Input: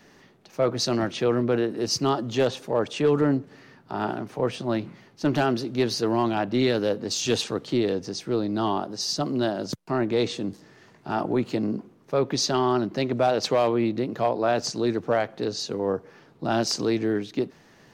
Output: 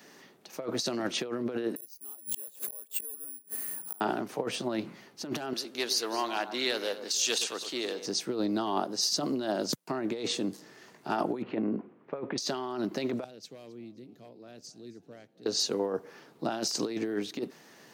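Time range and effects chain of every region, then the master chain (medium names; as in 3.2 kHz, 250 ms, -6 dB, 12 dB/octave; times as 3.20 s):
1.76–4.01 s: inverted gate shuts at -21 dBFS, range -35 dB + careless resampling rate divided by 4×, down filtered, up zero stuff
5.53–8.06 s: high-pass 1.3 kHz 6 dB/octave + echo whose repeats swap between lows and highs 108 ms, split 1.4 kHz, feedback 55%, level -10 dB
11.42–12.38 s: low-pass 2.5 kHz 24 dB/octave + hum notches 50/100 Hz
13.24–15.46 s: amplifier tone stack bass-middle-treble 10-0-1 + frequency-shifting echo 265 ms, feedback 45%, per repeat +60 Hz, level -20 dB
whole clip: treble shelf 7.1 kHz +11 dB; compressor with a negative ratio -26 dBFS, ratio -0.5; high-pass 210 Hz 12 dB/octave; trim -3 dB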